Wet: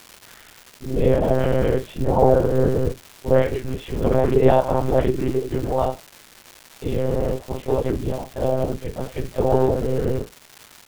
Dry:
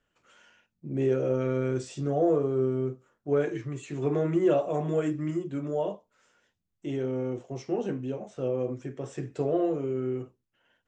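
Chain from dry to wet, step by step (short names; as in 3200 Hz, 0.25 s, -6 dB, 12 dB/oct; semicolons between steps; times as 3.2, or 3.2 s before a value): harmoniser -5 st -18 dB, +4 st -2 dB, +5 st -4 dB; monotone LPC vocoder at 8 kHz 130 Hz; crackle 500/s -36 dBFS; gain +5.5 dB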